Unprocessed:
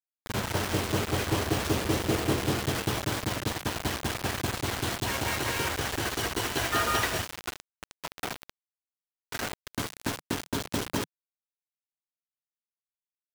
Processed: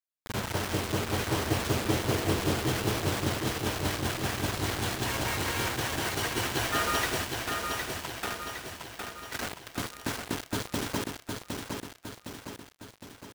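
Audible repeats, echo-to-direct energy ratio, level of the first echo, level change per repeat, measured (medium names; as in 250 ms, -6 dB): 6, -3.0 dB, -4.5 dB, -5.5 dB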